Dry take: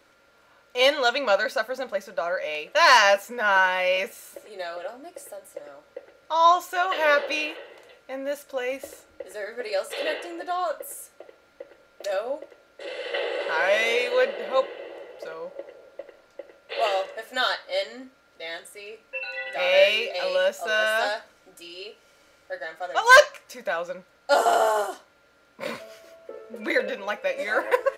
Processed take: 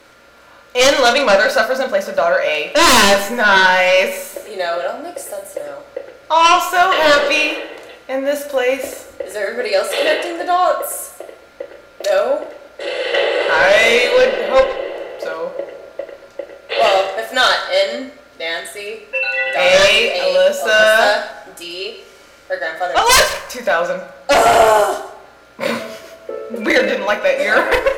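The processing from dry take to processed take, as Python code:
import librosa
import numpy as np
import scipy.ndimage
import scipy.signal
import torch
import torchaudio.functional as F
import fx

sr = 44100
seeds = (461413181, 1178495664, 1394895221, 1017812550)

p1 = fx.peak_eq(x, sr, hz=1400.0, db=-6.5, octaves=2.1, at=(20.15, 20.65))
p2 = fx.fold_sine(p1, sr, drive_db=11, ceiling_db=-4.5)
p3 = fx.doubler(p2, sr, ms=34.0, db=-8.5)
p4 = p3 + fx.echo_single(p3, sr, ms=132, db=-15.0, dry=0)
p5 = fx.rev_plate(p4, sr, seeds[0], rt60_s=1.1, hf_ratio=0.6, predelay_ms=0, drr_db=11.5)
y = p5 * 10.0 ** (-2.5 / 20.0)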